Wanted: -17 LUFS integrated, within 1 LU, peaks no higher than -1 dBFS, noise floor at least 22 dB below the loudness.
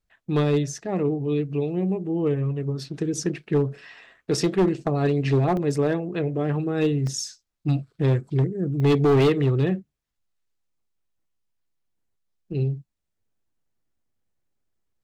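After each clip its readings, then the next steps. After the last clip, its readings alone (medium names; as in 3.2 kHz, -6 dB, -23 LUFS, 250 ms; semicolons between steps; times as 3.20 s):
clipped samples 1.1%; clipping level -14.5 dBFS; dropouts 3; longest dropout 1.1 ms; loudness -24.0 LUFS; peak level -14.5 dBFS; loudness target -17.0 LUFS
-> clip repair -14.5 dBFS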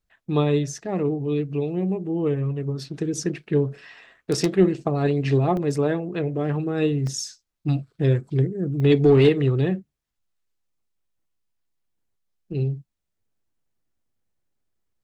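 clipped samples 0.0%; dropouts 3; longest dropout 1.1 ms
-> interpolate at 5.57/7.07/8.80 s, 1.1 ms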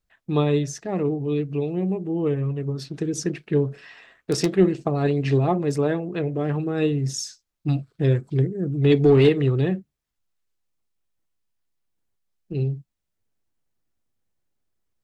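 dropouts 0; loudness -23.0 LUFS; peak level -5.5 dBFS; loudness target -17.0 LUFS
-> trim +6 dB; peak limiter -1 dBFS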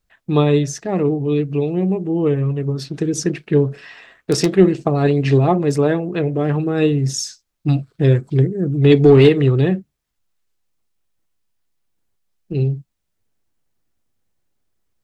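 loudness -17.5 LUFS; peak level -1.0 dBFS; noise floor -74 dBFS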